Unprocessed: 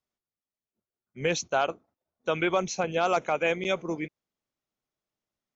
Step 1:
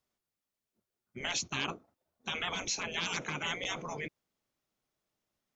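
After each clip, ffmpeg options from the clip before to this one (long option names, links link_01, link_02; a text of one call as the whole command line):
ffmpeg -i in.wav -af "afftfilt=real='re*lt(hypot(re,im),0.0708)':imag='im*lt(hypot(re,im),0.0708)':win_size=1024:overlap=0.75,volume=4dB" out.wav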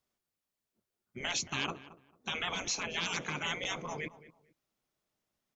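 ffmpeg -i in.wav -filter_complex "[0:a]asplit=2[link_01][link_02];[link_02]adelay=223,lowpass=frequency=1700:poles=1,volume=-15.5dB,asplit=2[link_03][link_04];[link_04]adelay=223,lowpass=frequency=1700:poles=1,volume=0.24[link_05];[link_01][link_03][link_05]amix=inputs=3:normalize=0" out.wav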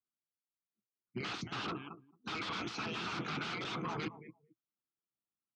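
ffmpeg -i in.wav -af "aeval=exprs='0.0141*(abs(mod(val(0)/0.0141+3,4)-2)-1)':channel_layout=same,afftdn=noise_reduction=22:noise_floor=-57,highpass=100,equalizer=frequency=120:width_type=q:width=4:gain=8,equalizer=frequency=200:width_type=q:width=4:gain=5,equalizer=frequency=320:width_type=q:width=4:gain=7,equalizer=frequency=570:width_type=q:width=4:gain=-10,equalizer=frequency=1300:width_type=q:width=4:gain=9,equalizer=frequency=1800:width_type=q:width=4:gain=-5,lowpass=frequency=4700:width=0.5412,lowpass=frequency=4700:width=1.3066,volume=3dB" out.wav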